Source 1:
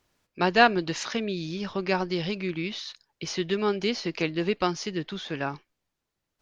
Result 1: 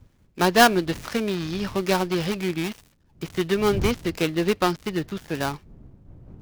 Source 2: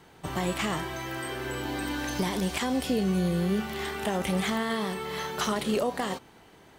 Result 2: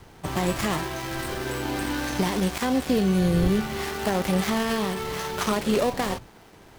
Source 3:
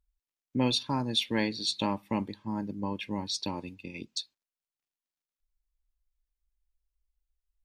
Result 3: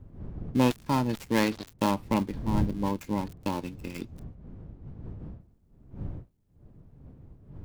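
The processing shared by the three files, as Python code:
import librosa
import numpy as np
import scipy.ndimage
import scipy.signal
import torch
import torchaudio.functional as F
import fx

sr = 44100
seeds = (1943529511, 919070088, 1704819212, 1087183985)

y = fx.dead_time(x, sr, dead_ms=0.16)
y = fx.dmg_wind(y, sr, seeds[0], corner_hz=140.0, level_db=-44.0)
y = F.gain(torch.from_numpy(y), 4.5).numpy()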